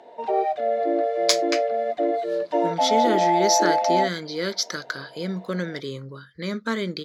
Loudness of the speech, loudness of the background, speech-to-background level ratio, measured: -26.5 LUFS, -23.0 LUFS, -3.5 dB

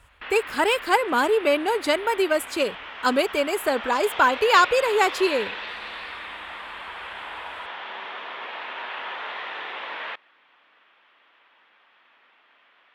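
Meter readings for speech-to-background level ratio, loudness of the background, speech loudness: 12.0 dB, -34.0 LUFS, -22.0 LUFS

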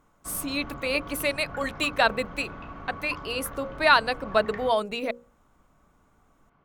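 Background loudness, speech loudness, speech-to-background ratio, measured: -41.0 LUFS, -26.5 LUFS, 14.5 dB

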